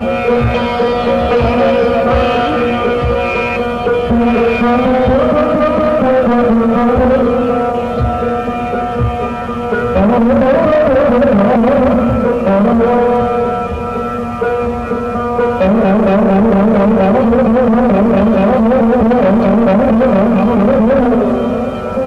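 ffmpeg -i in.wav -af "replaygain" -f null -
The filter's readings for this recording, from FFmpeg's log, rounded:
track_gain = -5.5 dB
track_peak = 0.370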